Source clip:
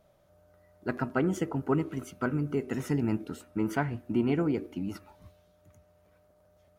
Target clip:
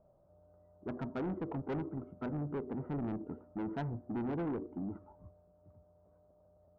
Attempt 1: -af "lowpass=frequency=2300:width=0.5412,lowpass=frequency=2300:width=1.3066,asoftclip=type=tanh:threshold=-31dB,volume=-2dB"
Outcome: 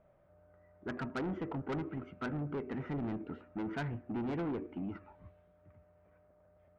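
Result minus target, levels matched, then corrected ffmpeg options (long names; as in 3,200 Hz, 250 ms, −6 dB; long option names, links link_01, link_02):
2,000 Hz band +6.5 dB
-af "lowpass=frequency=1000:width=0.5412,lowpass=frequency=1000:width=1.3066,asoftclip=type=tanh:threshold=-31dB,volume=-2dB"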